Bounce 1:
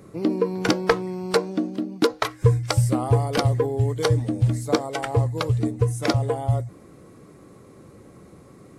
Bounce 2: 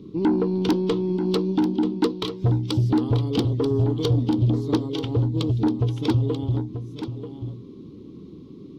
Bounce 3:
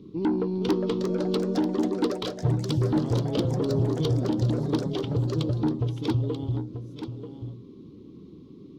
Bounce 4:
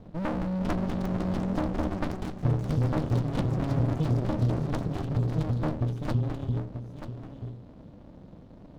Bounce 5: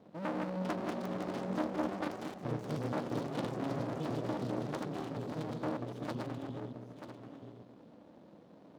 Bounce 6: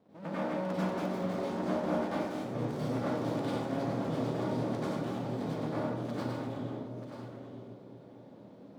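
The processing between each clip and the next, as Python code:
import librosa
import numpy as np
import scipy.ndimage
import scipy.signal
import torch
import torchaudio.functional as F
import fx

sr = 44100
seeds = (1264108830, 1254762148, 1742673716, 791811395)

y1 = fx.curve_eq(x, sr, hz=(120.0, 270.0, 410.0, 650.0, 980.0, 1700.0, 3300.0, 5900.0, 8600.0, 13000.0), db=(0, 9, 3, -23, -7, -23, 5, -9, -29, -17))
y1 = 10.0 ** (-16.5 / 20.0) * np.tanh(y1 / 10.0 ** (-16.5 / 20.0))
y1 = y1 + 10.0 ** (-10.0 / 20.0) * np.pad(y1, (int(936 * sr / 1000.0), 0))[:len(y1)]
y1 = F.gain(torch.from_numpy(y1), 1.5).numpy()
y2 = fx.echo_pitch(y1, sr, ms=494, semitones=4, count=3, db_per_echo=-6.0)
y2 = F.gain(torch.from_numpy(y2), -4.5).numpy()
y3 = fx.running_max(y2, sr, window=65)
y4 = fx.reverse_delay(y3, sr, ms=114, wet_db=-3.0)
y4 = scipy.signal.sosfilt(scipy.signal.butter(2, 260.0, 'highpass', fs=sr, output='sos'), y4)
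y4 = F.gain(torch.from_numpy(y4), -5.0).numpy()
y5 = fx.echo_bbd(y4, sr, ms=242, stages=1024, feedback_pct=73, wet_db=-10.0)
y5 = fx.rev_plate(y5, sr, seeds[0], rt60_s=0.71, hf_ratio=0.8, predelay_ms=80, drr_db=-9.5)
y5 = F.gain(torch.from_numpy(y5), -7.5).numpy()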